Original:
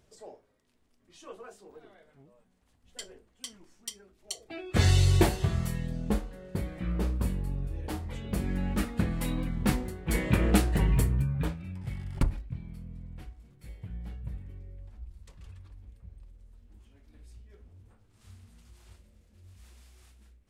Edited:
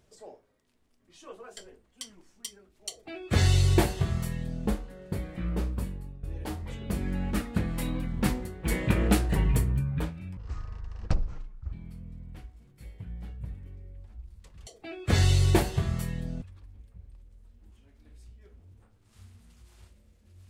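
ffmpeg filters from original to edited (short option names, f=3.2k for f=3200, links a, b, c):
-filter_complex "[0:a]asplit=7[a][b][c][d][e][f][g];[a]atrim=end=1.572[h];[b]atrim=start=2.998:end=7.66,asetpts=PTS-STARTPTS,afade=t=out:st=4.012:d=0.65:silence=0.177828[i];[c]atrim=start=7.66:end=11.804,asetpts=PTS-STARTPTS,afade=t=in:d=0.004:c=hsin:silence=0.177828[j];[d]atrim=start=11.8:end=12.56,asetpts=PTS-STARTPTS,asetrate=24696,aresample=44100[k];[e]atrim=start=12.556:end=15.502[l];[f]atrim=start=4.328:end=6.082[m];[g]atrim=start=15.498[n];[i][j]concat=n=2:v=0:a=1[o];[h][o]acrossfade=d=0.004:c1=hsin:c2=hsin[p];[p][k]acrossfade=d=0.004:c1=hsin:c2=hsin[q];[q][l]acrossfade=d=0.004:c1=hsin:c2=hsin[r];[r][m]acrossfade=d=0.004:c1=hsin:c2=hsin[s];[s][n]acrossfade=d=0.004:c1=hsin:c2=hsin"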